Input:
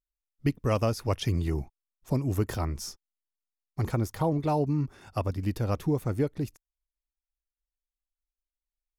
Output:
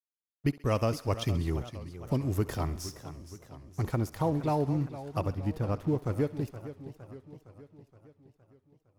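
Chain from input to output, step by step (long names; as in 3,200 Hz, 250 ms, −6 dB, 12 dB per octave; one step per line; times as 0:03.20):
0:05.31–0:06.04: high-shelf EQ 2,500 Hz −10.5 dB
dead-zone distortion −49.5 dBFS
feedback echo with a high-pass in the loop 66 ms, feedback 71%, high-pass 460 Hz, level −18 dB
feedback echo with a swinging delay time 465 ms, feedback 57%, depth 164 cents, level −13.5 dB
level −1.5 dB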